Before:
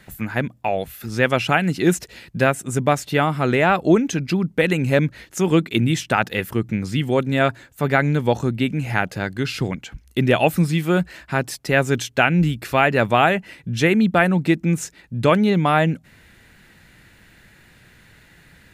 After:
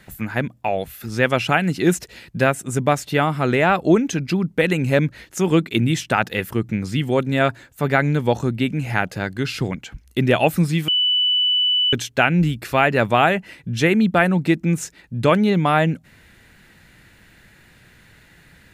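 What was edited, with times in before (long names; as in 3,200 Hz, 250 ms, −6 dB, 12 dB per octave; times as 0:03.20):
0:10.88–0:11.93: beep over 2,980 Hz −15 dBFS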